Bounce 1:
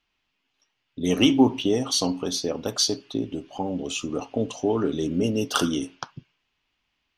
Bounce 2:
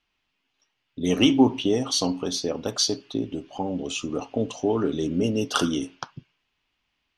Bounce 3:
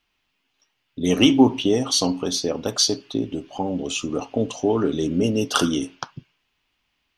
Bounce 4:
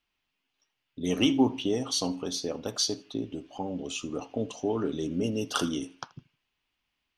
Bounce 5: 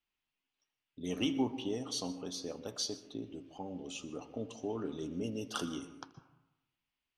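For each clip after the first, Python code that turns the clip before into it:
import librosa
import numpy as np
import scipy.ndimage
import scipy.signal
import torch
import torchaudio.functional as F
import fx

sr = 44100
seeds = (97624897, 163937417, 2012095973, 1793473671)

y1 = scipy.signal.sosfilt(scipy.signal.bessel(2, 9500.0, 'lowpass', norm='mag', fs=sr, output='sos'), x)
y2 = fx.high_shelf(y1, sr, hz=10000.0, db=6.0)
y2 = y2 * librosa.db_to_amplitude(3.0)
y3 = fx.echo_feedback(y2, sr, ms=81, feedback_pct=28, wet_db=-23.5)
y3 = y3 * librosa.db_to_amplitude(-8.5)
y4 = fx.rev_plate(y3, sr, seeds[0], rt60_s=0.95, hf_ratio=0.3, predelay_ms=110, drr_db=13.5)
y4 = y4 * librosa.db_to_amplitude(-9.0)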